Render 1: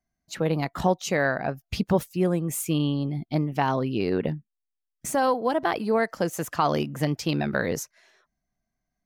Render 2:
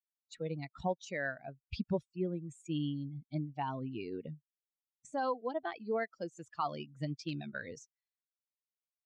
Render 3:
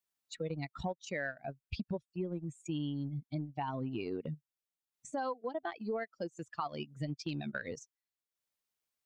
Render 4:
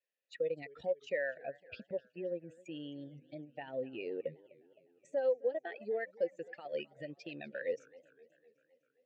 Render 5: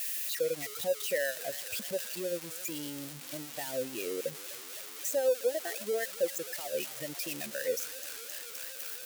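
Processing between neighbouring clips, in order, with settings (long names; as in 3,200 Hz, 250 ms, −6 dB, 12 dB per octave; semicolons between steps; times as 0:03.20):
spectral dynamics exaggerated over time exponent 2; de-essing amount 90%; Chebyshev low-pass filter 8,000 Hz, order 4; level −7.5 dB
downward compressor 6 to 1, threshold −40 dBFS, peak gain reduction 12 dB; transient designer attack −2 dB, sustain −8 dB; level +7 dB
brickwall limiter −30 dBFS, peak gain reduction 6 dB; formant filter e; feedback echo with a swinging delay time 258 ms, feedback 60%, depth 200 cents, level −22 dB; level +12 dB
spike at every zero crossing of −30 dBFS; level +3.5 dB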